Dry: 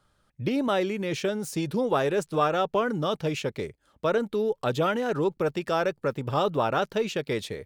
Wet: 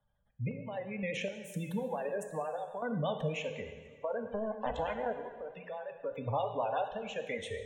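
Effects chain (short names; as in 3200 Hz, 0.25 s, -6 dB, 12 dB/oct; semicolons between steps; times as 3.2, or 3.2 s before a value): 4.22–5.07 cycle switcher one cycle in 2, muted; compressor, threshold -27 dBFS, peak gain reduction 8.5 dB; spectral noise reduction 15 dB; spectral gate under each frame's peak -20 dB strong; fixed phaser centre 1300 Hz, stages 6; random-step tremolo 3.9 Hz, depth 80%; reverb RT60 1.2 s, pre-delay 6 ms, DRR 6 dB; vibrato 8.2 Hz 43 cents; three-band squash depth 40%; gain +2.5 dB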